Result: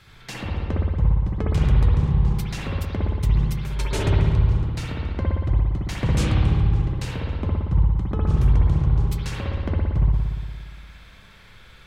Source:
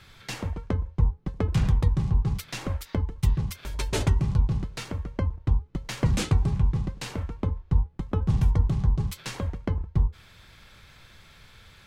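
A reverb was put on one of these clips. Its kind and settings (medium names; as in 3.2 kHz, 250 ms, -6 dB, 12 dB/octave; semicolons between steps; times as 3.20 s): spring tank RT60 1.6 s, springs 58 ms, chirp 55 ms, DRR -3.5 dB; trim -1 dB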